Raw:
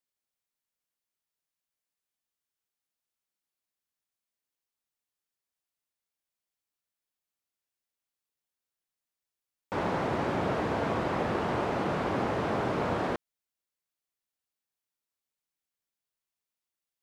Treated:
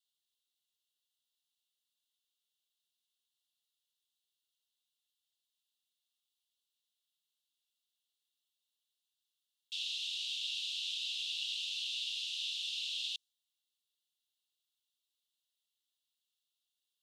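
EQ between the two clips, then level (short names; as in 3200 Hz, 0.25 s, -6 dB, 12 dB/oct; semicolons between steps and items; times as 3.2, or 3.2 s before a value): dynamic EQ 6000 Hz, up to +7 dB, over -59 dBFS, Q 0.98; rippled Chebyshev high-pass 2700 Hz, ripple 3 dB; bell 3500 Hz +13 dB 0.87 oct; 0.0 dB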